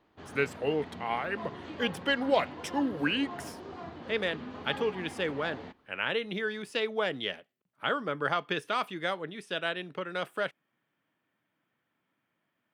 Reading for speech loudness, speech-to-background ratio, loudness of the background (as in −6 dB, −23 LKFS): −32.5 LKFS, 11.0 dB, −43.5 LKFS